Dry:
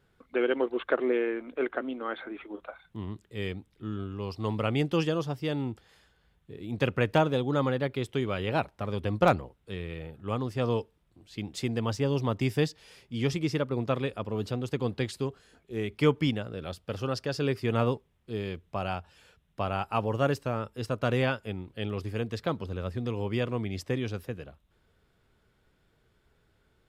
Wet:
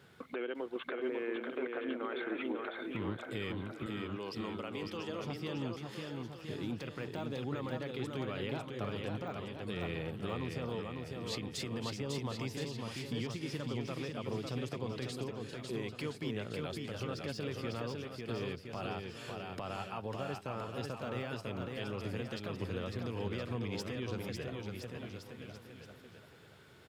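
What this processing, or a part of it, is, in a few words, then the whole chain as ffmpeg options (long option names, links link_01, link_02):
broadcast voice chain: -filter_complex "[0:a]highpass=frequency=95:width=0.5412,highpass=frequency=95:width=1.3066,deesser=1,acompressor=threshold=-45dB:ratio=4,equalizer=frequency=3600:width_type=o:width=2.6:gain=3,alimiter=level_in=13.5dB:limit=-24dB:level=0:latency=1:release=103,volume=-13.5dB,asettb=1/sr,asplit=3[link_01][link_02][link_03];[link_01]atrim=end=3.864[link_04];[link_02]atrim=start=3.86:end=5.22,asetpts=PTS-STARTPTS,afade=type=in:duration=0.004:curve=qsin,afade=type=out:start_time=1.356:duration=0.004:curve=qsin,highpass=260[link_05];[link_03]atrim=start=5.216[link_06];[link_04][link_05]acrossfade=duration=0.004:curve1=hsin:curve2=qsin[link_07];[link_07][link_06]acrossfade=duration=0.004:curve1=qsin:curve2=hsin,aecho=1:1:550|1018|1415|1753|2040:0.631|0.398|0.251|0.158|0.1,volume=8dB"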